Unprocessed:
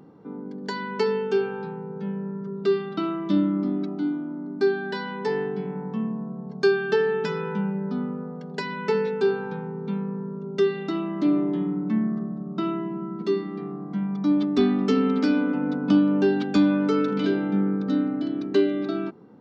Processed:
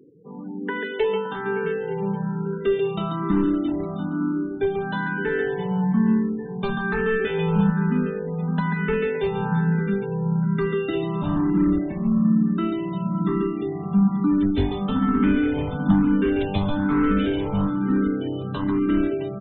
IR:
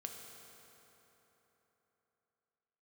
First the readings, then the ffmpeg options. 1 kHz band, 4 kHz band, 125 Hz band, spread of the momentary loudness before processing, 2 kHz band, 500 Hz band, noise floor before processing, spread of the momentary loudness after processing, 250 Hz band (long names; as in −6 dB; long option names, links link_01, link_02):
+3.5 dB, −1.0 dB, +8.0 dB, 11 LU, +3.5 dB, −0.5 dB, −36 dBFS, 7 LU, +2.5 dB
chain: -filter_complex "[0:a]asplit=2[link_01][link_02];[link_02]acompressor=threshold=-28dB:ratio=10,volume=-2dB[link_03];[link_01][link_03]amix=inputs=2:normalize=0,asplit=2[link_04][link_05];[link_05]adelay=565.6,volume=-10dB,highshelf=frequency=4000:gain=-12.7[link_06];[link_04][link_06]amix=inputs=2:normalize=0,aresample=8000,aresample=44100,asplit=2[link_07][link_08];[link_08]aecho=0:1:140|350|665|1138|1846:0.631|0.398|0.251|0.158|0.1[link_09];[link_07][link_09]amix=inputs=2:normalize=0,asoftclip=type=hard:threshold=-13.5dB,asubboost=boost=9.5:cutoff=110,afftfilt=real='re*gte(hypot(re,im),0.0178)':imag='im*gte(hypot(re,im),0.0178)':win_size=1024:overlap=0.75,dynaudnorm=framelen=250:gausssize=3:maxgain=4dB,asplit=2[link_10][link_11];[link_11]afreqshift=1.1[link_12];[link_10][link_12]amix=inputs=2:normalize=1,volume=-2dB"